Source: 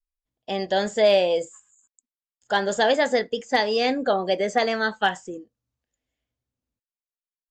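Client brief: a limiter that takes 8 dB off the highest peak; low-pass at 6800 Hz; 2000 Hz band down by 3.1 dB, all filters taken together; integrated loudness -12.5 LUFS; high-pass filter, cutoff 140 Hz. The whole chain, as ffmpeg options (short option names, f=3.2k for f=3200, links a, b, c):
-af "highpass=140,lowpass=6.8k,equalizer=f=2k:t=o:g=-4,volume=14.5dB,alimiter=limit=-2.5dB:level=0:latency=1"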